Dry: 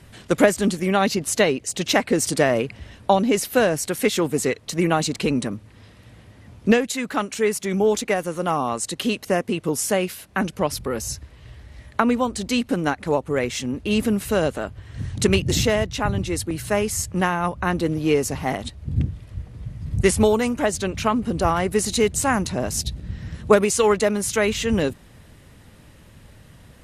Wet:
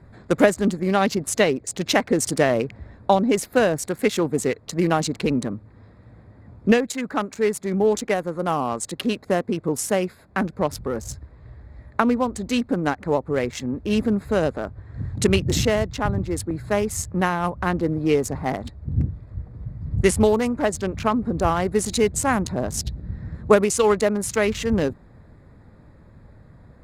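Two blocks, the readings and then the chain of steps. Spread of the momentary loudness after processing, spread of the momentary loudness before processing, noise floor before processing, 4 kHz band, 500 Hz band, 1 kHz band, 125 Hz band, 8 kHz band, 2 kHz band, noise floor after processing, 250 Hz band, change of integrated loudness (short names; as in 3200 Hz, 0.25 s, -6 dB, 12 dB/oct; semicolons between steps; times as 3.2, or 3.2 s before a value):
10 LU, 9 LU, -49 dBFS, -3.0 dB, 0.0 dB, -0.5 dB, 0.0 dB, -3.0 dB, -2.0 dB, -50 dBFS, 0.0 dB, -0.5 dB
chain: Wiener smoothing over 15 samples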